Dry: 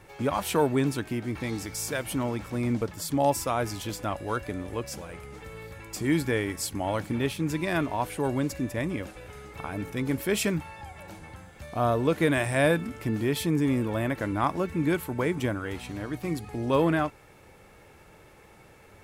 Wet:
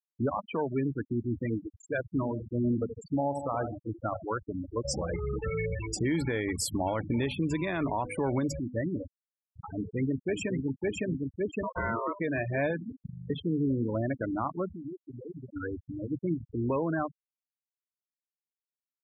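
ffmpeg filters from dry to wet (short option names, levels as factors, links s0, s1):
-filter_complex "[0:a]asettb=1/sr,asplit=3[s0][s1][s2];[s0]atrim=end=2.044[s3];[s1]atrim=start=2.04:end=4.27,asetpts=PTS-STARTPTS,afade=t=in:d=0.004:c=qsin,afade=t=out:st=2.226:d=0.004:c=qsin,aecho=1:1:78|156|234|312|390|468:0.376|0.195|0.102|0.0528|0.0275|0.0143,atrim=end_sample=98343[s4];[s2]atrim=start=4.266[s5];[s3][s4]acrossfade=d=0.004:c1=hsin:c2=qsin[s6];[s6][s5]acrossfade=d=0.004:c1=qsin:c2=hsin,asplit=2[s7][s8];[s8]afade=t=in:st=9.72:d=0.01,afade=t=out:st=10.59:d=0.01,aecho=0:1:560|1120|1680|2240|2800|3360|3920|4480|5040|5600|6160:0.841395|0.546907|0.355489|0.231068|0.150194|0.0976263|0.0634571|0.0412471|0.0268106|0.0174269|0.0113275[s9];[s7][s9]amix=inputs=2:normalize=0,asettb=1/sr,asplit=3[s10][s11][s12];[s10]atrim=end=11.634[s13];[s11]atrim=start=11.63:end=12.2,asetpts=PTS-STARTPTS,afade=t=in:d=0.004:c=qsin,afade=t=out:st=0.566:d=0.004:c=qsin,aeval=exprs='val(0)*sin(2*PI*800*n/s)':c=same[s14];[s12]atrim=start=12.196[s15];[s13][s14]acrossfade=d=0.004:c1=hsin:c2=qsin[s16];[s16][s15]acrossfade=d=0.004:c1=qsin:c2=hsin,asettb=1/sr,asplit=3[s17][s18][s19];[s17]atrim=end=14.724[s20];[s18]atrim=start=14.72:end=15.56,asetpts=PTS-STARTPTS,afade=t=in:d=0.004:c=qsin,afade=t=out:st=0.836:d=0.004:c=qsin,acompressor=threshold=0.0178:ratio=8:attack=3.2:release=140:knee=1:detection=peak[s21];[s19]atrim=start=15.556[s22];[s20][s21]acrossfade=d=0.004:c1=hsin:c2=qsin[s23];[s23][s22]acrossfade=d=0.004:c1=qsin:c2=hsin,asplit=10[s24][s25][s26][s27][s28][s29][s30][s31][s32][s33];[s24]atrim=end=4.852[s34];[s25]atrim=start=4.848:end=8.592,asetpts=PTS-STARTPTS,volume=3.55[s35];[s26]atrim=start=8.588:end=13.062[s36];[s27]atrim=start=13.018:end=13.062[s37];[s28]atrim=start=13.018:end=13.062[s38];[s29]atrim=start=13.018:end=13.062[s39];[s30]atrim=start=13.018:end=13.062[s40];[s31]atrim=start=13.018:end=13.062[s41];[s32]atrim=start=13.018:end=13.062[s42];[s33]atrim=start=13.298[s43];[s34][s35]acrossfade=d=0.004:c1=hsin:c2=hsin[s44];[s44][s36]acrossfade=d=0.004:c1=hsin:c2=hsin[s45];[s45][s37]acrossfade=d=0.004:c1=hsin:c2=hsin[s46];[s46][s38]acrossfade=d=0.004:c1=hsin:c2=hsin[s47];[s47][s39]acrossfade=d=0.004:c1=hsin:c2=hsin[s48];[s48][s40]acrossfade=d=0.004:c1=hsin:c2=hsin[s49];[s49][s41]acrossfade=d=0.004:c1=hsin:c2=hsin[s50];[s50][s42]acrossfade=d=0.004:c1=hsin:c2=hsin[s51];[s51][s43]acrossfade=d=0.004:c1=hsin:c2=hsin,bandreject=f=50:t=h:w=6,bandreject=f=100:t=h:w=6,bandreject=f=150:t=h:w=6,bandreject=f=200:t=h:w=6,bandreject=f=250:t=h:w=6,afftfilt=real='re*gte(hypot(re,im),0.0794)':imag='im*gte(hypot(re,im),0.0794)':win_size=1024:overlap=0.75,alimiter=limit=0.075:level=0:latency=1:release=377,volume=1.19"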